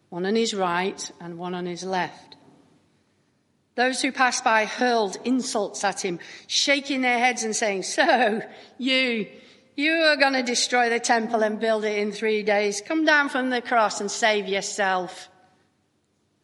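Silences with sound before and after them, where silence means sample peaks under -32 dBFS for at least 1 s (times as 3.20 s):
2.32–3.78 s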